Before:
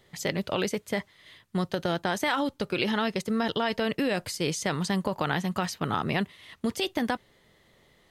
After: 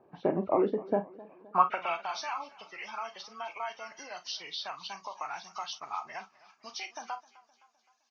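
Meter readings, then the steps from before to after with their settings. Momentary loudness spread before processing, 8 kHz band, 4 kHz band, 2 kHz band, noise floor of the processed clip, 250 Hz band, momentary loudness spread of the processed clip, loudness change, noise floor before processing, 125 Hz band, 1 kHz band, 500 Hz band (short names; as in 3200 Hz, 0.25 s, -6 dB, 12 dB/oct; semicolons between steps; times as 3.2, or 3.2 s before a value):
6 LU, -10.5 dB, -8.0 dB, -10.0 dB, -71 dBFS, -10.5 dB, 16 LU, -5.0 dB, -63 dBFS, under -10 dB, -0.5 dB, -4.0 dB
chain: nonlinear frequency compression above 1200 Hz 1.5:1; reverb removal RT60 1.9 s; band shelf 900 Hz +13 dB 1.2 oct; band-pass sweep 330 Hz -> 6000 Hz, 1.13–2.16; early reflections 35 ms -12 dB, 51 ms -15.5 dB; warbling echo 0.258 s, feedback 53%, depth 85 cents, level -21 dB; gain +6.5 dB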